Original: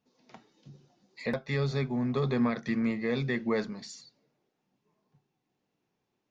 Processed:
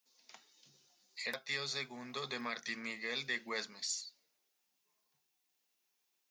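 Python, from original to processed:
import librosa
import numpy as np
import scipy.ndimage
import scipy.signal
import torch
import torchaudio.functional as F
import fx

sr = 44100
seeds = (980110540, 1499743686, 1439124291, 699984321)

y = np.diff(x, prepend=0.0)
y = y * 10.0 ** (9.5 / 20.0)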